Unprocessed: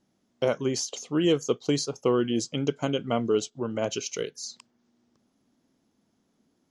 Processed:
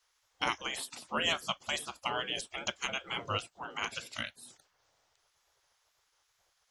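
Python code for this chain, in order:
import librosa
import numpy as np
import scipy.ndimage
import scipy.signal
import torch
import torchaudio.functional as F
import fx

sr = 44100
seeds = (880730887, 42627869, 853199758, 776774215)

y = fx.spec_gate(x, sr, threshold_db=-20, keep='weak')
y = fx.wow_flutter(y, sr, seeds[0], rate_hz=2.1, depth_cents=52.0)
y = F.gain(torch.from_numpy(y), 6.5).numpy()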